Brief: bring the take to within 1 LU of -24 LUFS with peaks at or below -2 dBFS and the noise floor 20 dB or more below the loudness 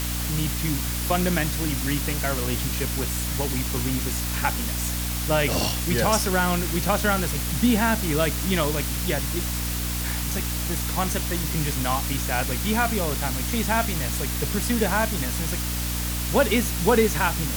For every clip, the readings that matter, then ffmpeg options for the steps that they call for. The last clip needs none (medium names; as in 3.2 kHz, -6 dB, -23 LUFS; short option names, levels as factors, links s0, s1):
hum 60 Hz; highest harmonic 300 Hz; hum level -27 dBFS; noise floor -27 dBFS; noise floor target -44 dBFS; loudness -24.0 LUFS; peak level -6.0 dBFS; loudness target -24.0 LUFS
-> -af "bandreject=f=60:t=h:w=6,bandreject=f=120:t=h:w=6,bandreject=f=180:t=h:w=6,bandreject=f=240:t=h:w=6,bandreject=f=300:t=h:w=6"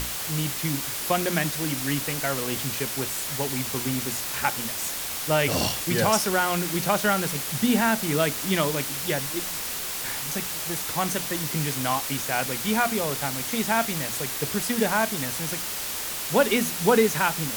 hum not found; noise floor -31 dBFS; noise floor target -45 dBFS
-> -af "afftdn=nr=14:nf=-31"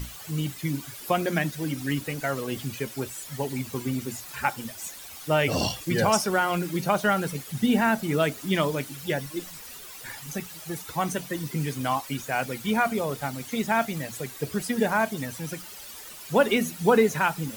noise floor -43 dBFS; noise floor target -47 dBFS
-> -af "afftdn=nr=6:nf=-43"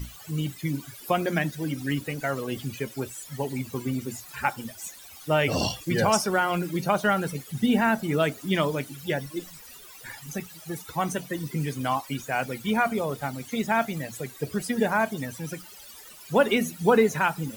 noise floor -47 dBFS; loudness -27.0 LUFS; peak level -7.5 dBFS; loudness target -24.0 LUFS
-> -af "volume=1.41"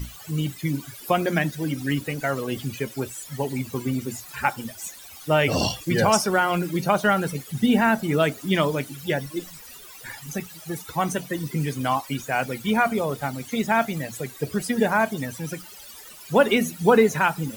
loudness -24.0 LUFS; peak level -4.5 dBFS; noise floor -44 dBFS